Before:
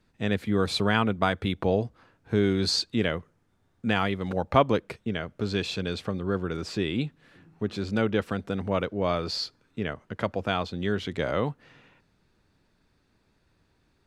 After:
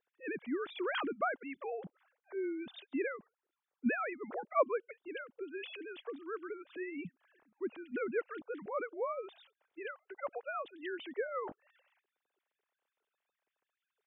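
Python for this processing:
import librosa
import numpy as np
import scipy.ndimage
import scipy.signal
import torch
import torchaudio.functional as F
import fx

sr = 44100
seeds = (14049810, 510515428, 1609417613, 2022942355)

y = fx.sine_speech(x, sr)
y = fx.hpss(y, sr, part='harmonic', gain_db=-9)
y = y * 10.0 ** (-7.5 / 20.0)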